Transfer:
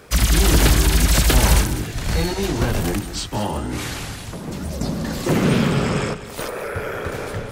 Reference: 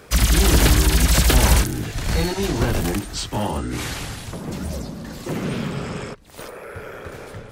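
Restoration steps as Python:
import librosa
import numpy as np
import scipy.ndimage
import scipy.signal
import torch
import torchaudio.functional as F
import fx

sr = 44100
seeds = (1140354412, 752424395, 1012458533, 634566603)

y = fx.fix_declick_ar(x, sr, threshold=6.5)
y = fx.fix_echo_inverse(y, sr, delay_ms=199, level_db=-12.5)
y = fx.fix_level(y, sr, at_s=4.81, step_db=-8.0)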